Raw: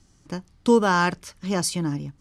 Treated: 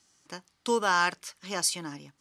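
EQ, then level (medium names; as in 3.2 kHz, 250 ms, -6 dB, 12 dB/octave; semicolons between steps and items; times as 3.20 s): high-pass 1.2 kHz 6 dB/octave; 0.0 dB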